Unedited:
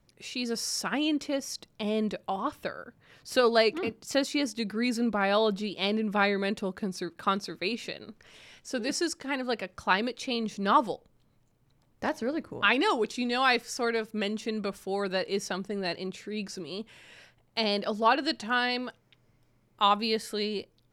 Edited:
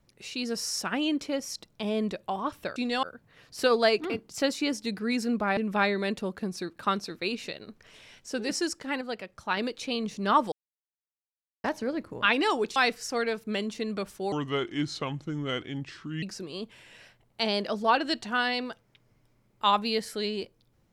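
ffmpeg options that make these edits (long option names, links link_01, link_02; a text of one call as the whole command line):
ffmpeg -i in.wav -filter_complex "[0:a]asplit=11[link_01][link_02][link_03][link_04][link_05][link_06][link_07][link_08][link_09][link_10][link_11];[link_01]atrim=end=2.762[link_12];[link_02]atrim=start=13.158:end=13.432[link_13];[link_03]atrim=start=2.758:end=5.302[link_14];[link_04]atrim=start=5.968:end=9.412[link_15];[link_05]atrim=start=9.408:end=9.972,asetpts=PTS-STARTPTS,volume=-4.5dB[link_16];[link_06]atrim=start=9.968:end=10.92,asetpts=PTS-STARTPTS,afade=type=out:start_time=0.948:duration=0.004:curve=hsin[link_17];[link_07]atrim=start=10.92:end=12.04,asetpts=PTS-STARTPTS,volume=0[link_18];[link_08]atrim=start=12.04:end=13.162,asetpts=PTS-STARTPTS,afade=type=in:duration=0.004:curve=hsin[link_19];[link_09]atrim=start=13.428:end=14.994[link_20];[link_10]atrim=start=14.99:end=16.4,asetpts=PTS-STARTPTS,asetrate=32634,aresample=44100,atrim=end_sample=84028,asetpts=PTS-STARTPTS[link_21];[link_11]atrim=start=16.396[link_22];[link_12][link_13]acrossfade=duration=0.004:curve1=hsin:curve2=hsin[link_23];[link_23][link_14]acrossfade=duration=0.004:curve1=hsin:curve2=hsin[link_24];[link_24][link_15]acrossfade=duration=0.004:curve1=hsin:curve2=hsin[link_25];[link_25][link_16]acrossfade=duration=0.004:curve1=hsin:curve2=hsin[link_26];[link_17][link_18][link_19]concat=n=3:v=0:a=1[link_27];[link_26][link_27]acrossfade=duration=0.004:curve1=hsin:curve2=hsin[link_28];[link_28][link_20]acrossfade=duration=0.004:curve1=hsin:curve2=hsin[link_29];[link_29][link_21]acrossfade=duration=0.004:curve1=hsin:curve2=hsin[link_30];[link_30][link_22]acrossfade=duration=0.004:curve1=hsin:curve2=hsin" out.wav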